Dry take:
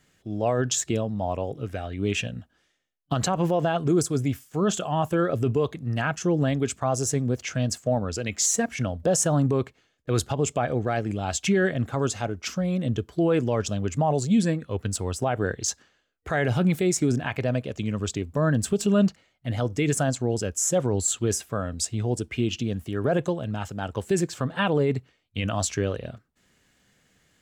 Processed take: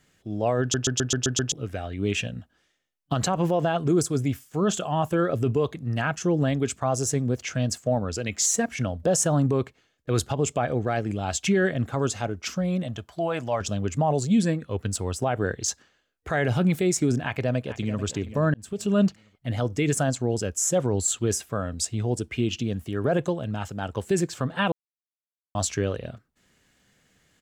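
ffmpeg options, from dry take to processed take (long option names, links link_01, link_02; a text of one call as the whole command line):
ffmpeg -i in.wav -filter_complex "[0:a]asettb=1/sr,asplit=3[link_01][link_02][link_03];[link_01]atrim=end=12.834[link_04];[link_02]atrim=start=12.83:end=13.61,asetpts=PTS-STARTPTS,afade=type=in:duration=0.004:curve=qsin,afade=type=out:start_time=0.776:duration=0.004:curve=qsin,lowshelf=frequency=530:width_type=q:width=3:gain=-7[link_05];[link_03]atrim=start=13.606[link_06];[link_04][link_05]acrossfade=duration=0.004:curve1=hsin:curve2=qsin[link_07];[link_07][link_06]acrossfade=duration=0.004:curve1=qsin:curve2=hsin,asplit=2[link_08][link_09];[link_09]afade=type=in:start_time=17.22:duration=0.01,afade=type=out:start_time=18.03:duration=0.01,aecho=0:1:440|880|1320:0.211349|0.0739721|0.0258902[link_10];[link_08][link_10]amix=inputs=2:normalize=0,asplit=11[link_11][link_12][link_13][link_14][link_15][link_16][link_17][link_18][link_19][link_20][link_21];[link_11]atrim=end=0.742[link_22];[link_12]atrim=start=0.608:end=0.742[link_23];[link_13]atrim=start=0.608:end=0.742[link_24];[link_14]atrim=start=0.608:end=0.742[link_25];[link_15]atrim=start=0.608:end=0.742[link_26];[link_16]atrim=start=0.608:end=0.742[link_27];[link_17]atrim=start=0.608:end=0.742[link_28];[link_18]atrim=start=1.518:end=18.54,asetpts=PTS-STARTPTS,afade=type=out:start_time=17.018:duration=0.004:curve=hsin[link_29];[link_19]atrim=start=18.54:end=24.72,asetpts=PTS-STARTPTS,afade=type=in:duration=0.48,afade=type=out:start_time=6.176:duration=0.004:curve=hsin[link_30];[link_20]atrim=start=24.72:end=25.55,asetpts=PTS-STARTPTS,volume=0[link_31];[link_21]atrim=start=25.55,asetpts=PTS-STARTPTS,afade=type=in:duration=0.004:curve=hsin[link_32];[link_22][link_23]acrossfade=duration=0.004:curve1=hsin:curve2=hsin[link_33];[link_33][link_24]acrossfade=duration=0.004:curve1=hsin:curve2=hsin[link_34];[link_34][link_25]acrossfade=duration=0.004:curve1=hsin:curve2=hsin[link_35];[link_35][link_26]acrossfade=duration=0.004:curve1=hsin:curve2=hsin[link_36];[link_36][link_27]acrossfade=duration=0.004:curve1=hsin:curve2=hsin[link_37];[link_37][link_28]acrossfade=duration=0.004:curve1=hsin:curve2=hsin[link_38];[link_29][link_30][link_31][link_32]concat=n=4:v=0:a=1[link_39];[link_38][link_39]acrossfade=duration=0.004:curve1=hsin:curve2=hsin" out.wav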